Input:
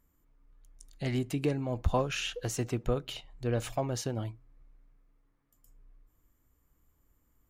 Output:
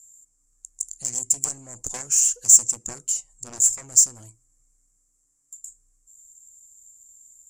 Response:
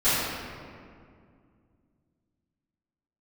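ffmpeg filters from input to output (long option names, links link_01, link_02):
-af "aeval=exprs='0.2*(cos(1*acos(clip(val(0)/0.2,-1,1)))-cos(1*PI/2))+0.0708*(cos(7*acos(clip(val(0)/0.2,-1,1)))-cos(7*PI/2))':channel_layout=same,lowpass=frequency=7400:width_type=q:width=11,aexciter=amount=14.5:drive=8.9:freq=5700,volume=-12.5dB"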